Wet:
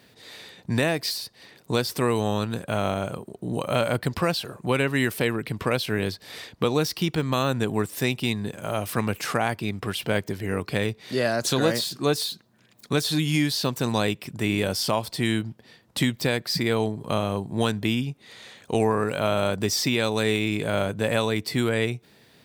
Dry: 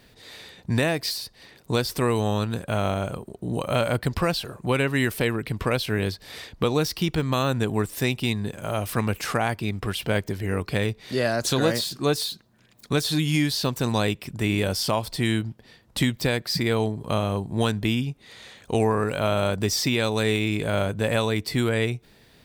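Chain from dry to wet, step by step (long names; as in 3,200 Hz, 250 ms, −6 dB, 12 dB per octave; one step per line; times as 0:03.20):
high-pass filter 110 Hz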